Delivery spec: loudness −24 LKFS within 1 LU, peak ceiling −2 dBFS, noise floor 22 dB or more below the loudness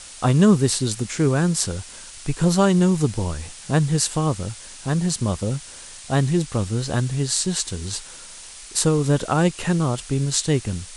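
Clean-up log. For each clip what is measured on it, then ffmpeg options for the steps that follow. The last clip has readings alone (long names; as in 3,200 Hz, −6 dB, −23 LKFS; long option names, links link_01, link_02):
background noise floor −41 dBFS; target noise floor −44 dBFS; integrated loudness −21.5 LKFS; sample peak −3.5 dBFS; target loudness −24.0 LKFS
→ -af "afftdn=noise_reduction=6:noise_floor=-41"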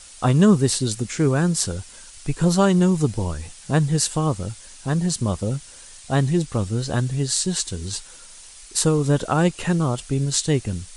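background noise floor −44 dBFS; integrated loudness −21.5 LKFS; sample peak −3.5 dBFS; target loudness −24.0 LKFS
→ -af "volume=-2.5dB"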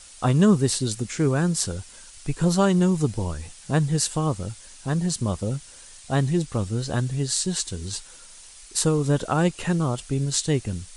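integrated loudness −24.0 LKFS; sample peak −6.0 dBFS; background noise floor −46 dBFS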